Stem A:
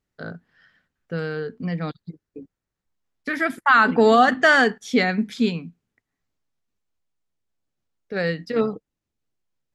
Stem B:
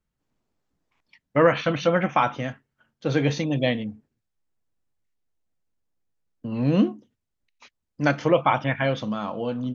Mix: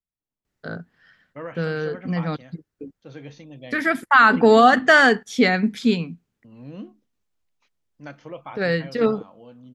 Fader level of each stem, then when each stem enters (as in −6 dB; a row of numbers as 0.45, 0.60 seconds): +2.0, −17.5 decibels; 0.45, 0.00 seconds